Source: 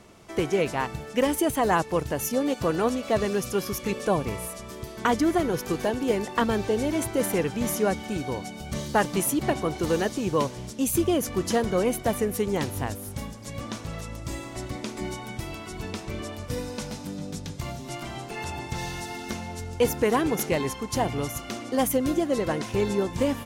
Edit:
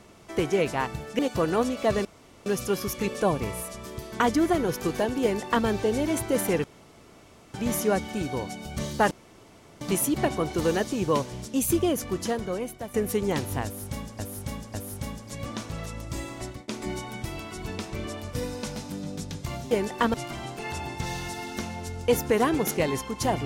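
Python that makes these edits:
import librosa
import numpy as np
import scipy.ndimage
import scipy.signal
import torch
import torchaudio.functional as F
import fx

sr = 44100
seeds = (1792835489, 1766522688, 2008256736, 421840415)

y = fx.edit(x, sr, fx.cut(start_s=1.19, length_s=1.26),
    fx.insert_room_tone(at_s=3.31, length_s=0.41),
    fx.duplicate(start_s=6.08, length_s=0.43, to_s=17.86),
    fx.insert_room_tone(at_s=7.49, length_s=0.9),
    fx.insert_room_tone(at_s=9.06, length_s=0.7),
    fx.fade_out_to(start_s=10.97, length_s=1.22, floor_db=-14.0),
    fx.repeat(start_s=12.89, length_s=0.55, count=3),
    fx.fade_out_to(start_s=14.56, length_s=0.27, floor_db=-23.5), tone=tone)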